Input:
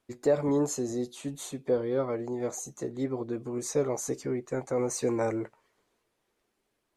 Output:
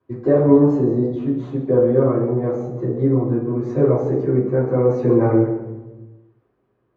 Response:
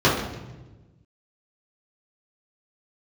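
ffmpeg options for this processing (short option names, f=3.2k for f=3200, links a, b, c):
-filter_complex "[0:a]lowpass=1.8k[a];[1:a]atrim=start_sample=2205[b];[a][b]afir=irnorm=-1:irlink=0,volume=-13dB"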